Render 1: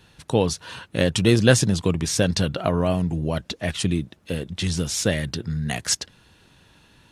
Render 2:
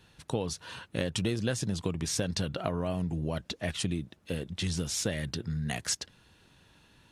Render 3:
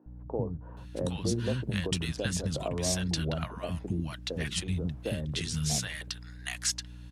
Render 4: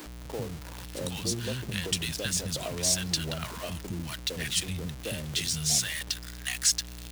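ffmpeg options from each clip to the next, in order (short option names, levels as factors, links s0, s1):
-af "acompressor=threshold=0.1:ratio=12,volume=0.501"
-filter_complex "[0:a]aeval=exprs='val(0)+0.00562*(sin(2*PI*60*n/s)+sin(2*PI*2*60*n/s)/2+sin(2*PI*3*60*n/s)/3+sin(2*PI*4*60*n/s)/4+sin(2*PI*5*60*n/s)/5)':c=same,acrossover=split=270|930[s0][s1][s2];[s0]adelay=60[s3];[s2]adelay=770[s4];[s3][s1][s4]amix=inputs=3:normalize=0,volume=1.19"
-af "aeval=exprs='val(0)+0.5*0.0178*sgn(val(0))':c=same,highshelf=f=2100:g=11.5,volume=0.531"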